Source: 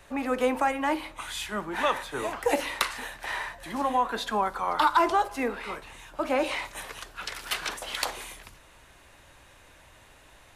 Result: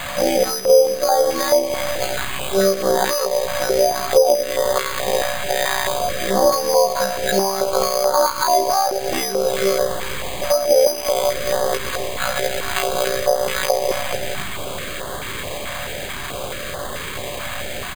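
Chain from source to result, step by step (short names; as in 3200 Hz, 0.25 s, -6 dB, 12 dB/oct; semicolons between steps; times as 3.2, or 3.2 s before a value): feedback echo 0.116 s, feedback 36%, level -20.5 dB; robotiser 100 Hz; band shelf 550 Hz +15 dB 1.1 oct; resonator 280 Hz, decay 0.75 s, mix 70%; granular stretch 1.7×, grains 26 ms; air absorption 140 m; requantised 8-bit, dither triangular; compressor 8:1, threshold -40 dBFS, peak gain reduction 20.5 dB; comb 1.8 ms, depth 31%; careless resampling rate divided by 8×, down filtered, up hold; maximiser +31.5 dB; stepped notch 4.6 Hz 400–2400 Hz; gain -2.5 dB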